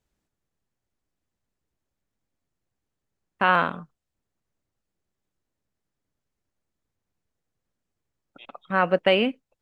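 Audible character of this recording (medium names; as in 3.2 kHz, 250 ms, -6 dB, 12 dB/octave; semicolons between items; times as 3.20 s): noise floor -84 dBFS; spectral tilt -2.5 dB/octave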